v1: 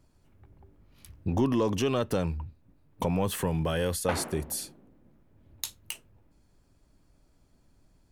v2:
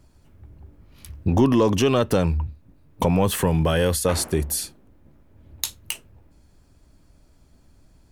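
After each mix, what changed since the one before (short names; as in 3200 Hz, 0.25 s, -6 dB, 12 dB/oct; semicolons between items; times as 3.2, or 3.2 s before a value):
speech +8.0 dB; master: add bell 70 Hz +6.5 dB 0.28 oct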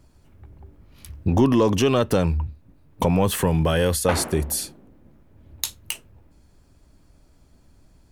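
background +6.5 dB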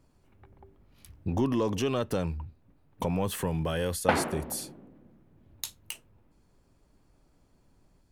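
speech -9.5 dB; master: add bell 70 Hz -6.5 dB 0.28 oct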